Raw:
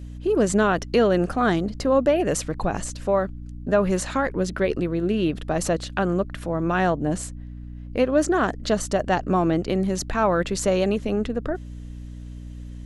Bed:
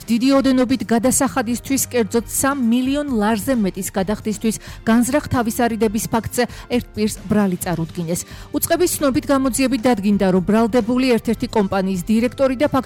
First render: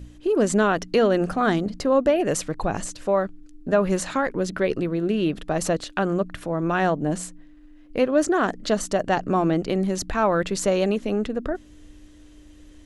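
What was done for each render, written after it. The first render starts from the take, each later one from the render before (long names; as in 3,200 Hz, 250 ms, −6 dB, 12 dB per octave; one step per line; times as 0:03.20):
hum removal 60 Hz, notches 4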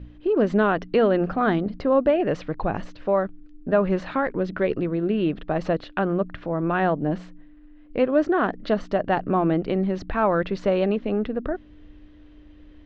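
Bessel low-pass filter 2,600 Hz, order 6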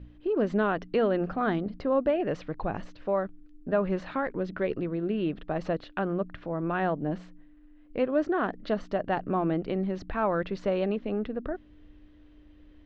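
level −6 dB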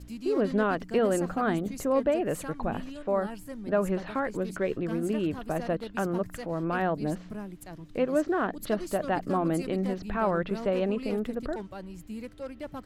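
mix in bed −22.5 dB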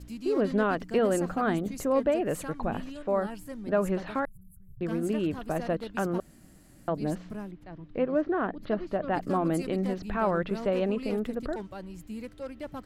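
0:04.25–0:04.81: inverse Chebyshev band-stop filter 280–5,600 Hz, stop band 50 dB
0:06.20–0:06.88: fill with room tone
0:07.51–0:09.14: high-frequency loss of the air 300 metres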